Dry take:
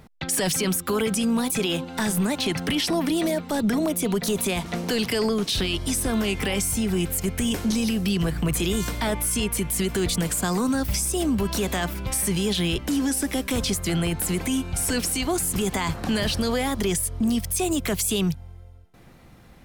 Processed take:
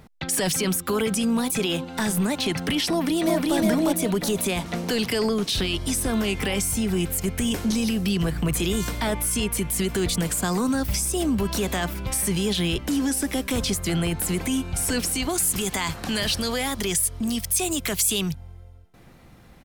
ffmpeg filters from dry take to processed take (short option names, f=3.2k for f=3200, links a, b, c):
-filter_complex "[0:a]asplit=2[a][b];[b]afade=t=in:st=2.91:d=0.01,afade=t=out:st=3.56:d=0.01,aecho=0:1:360|720|1080|1440|1800:0.891251|0.311938|0.109178|0.0382124|0.0133743[c];[a][c]amix=inputs=2:normalize=0,asettb=1/sr,asplit=3[d][e][f];[d]atrim=end=15.294[g];[e]atrim=start=15.29:end=18.31,asetpts=PTS-STARTPTS,afade=t=in:d=0.004:c=qsin,afade=t=out:st=3.016:d=0.004:c=qsin,tiltshelf=f=1.4k:g=-4[h];[f]atrim=start=18.306[i];[g][h]acrossfade=d=0.004:c1=hsin:c2=qsin[j];[j][i]acrossfade=d=0.004:c1=qsin:c2=hsin"